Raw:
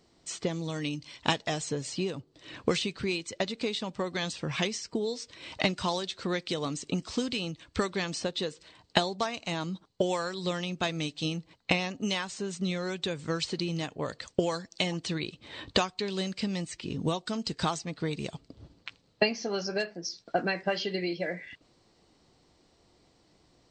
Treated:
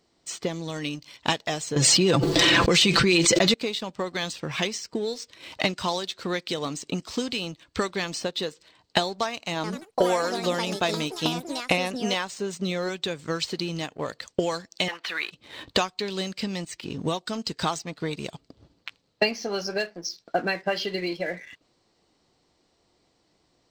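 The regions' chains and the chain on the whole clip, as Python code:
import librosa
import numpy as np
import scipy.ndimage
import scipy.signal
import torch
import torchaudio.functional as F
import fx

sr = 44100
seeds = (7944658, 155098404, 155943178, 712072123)

y = fx.chain(x, sr, fx.comb(ms=5.9, depth=0.58),
    fx.env_flatten(amount_pct=100), at=(1.76, 3.54))
y = fx.chain(y, sr, fx.echo_pitch(ms=88, semitones=5, count=3, db_per_echo=-6.0),
    fx.dynamic_eq(hz=540.0, q=0.83, threshold_db=-41.0, ratio=4.0, max_db=4), at=(9.55, 12.89))
y = fx.chain(y, sr, fx.law_mismatch(coded='mu'),
    fx.bandpass_edges(low_hz=730.0, high_hz=3400.0),
    fx.peak_eq(hz=1600.0, db=9.5, octaves=1.5), at=(14.88, 15.31))
y = fx.low_shelf(y, sr, hz=220.0, db=-5.5)
y = fx.leveller(y, sr, passes=1)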